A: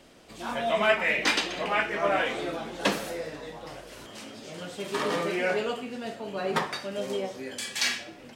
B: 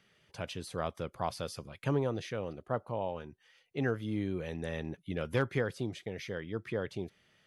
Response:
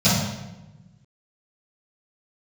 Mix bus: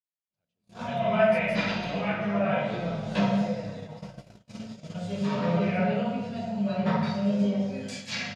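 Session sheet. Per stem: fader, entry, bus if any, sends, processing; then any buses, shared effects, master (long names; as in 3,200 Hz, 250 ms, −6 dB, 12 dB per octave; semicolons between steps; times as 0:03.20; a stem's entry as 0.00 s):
−7.0 dB, 0.30 s, send −12.5 dB, treble cut that deepens with the level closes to 3,000 Hz, closed at −24 dBFS; micro pitch shift up and down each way 26 cents
0:02.05 −9 dB → 0:02.29 −19 dB, 0.00 s, no send, gain into a clipping stage and back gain 29.5 dB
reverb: on, RT60 1.0 s, pre-delay 3 ms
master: noise gate −37 dBFS, range −38 dB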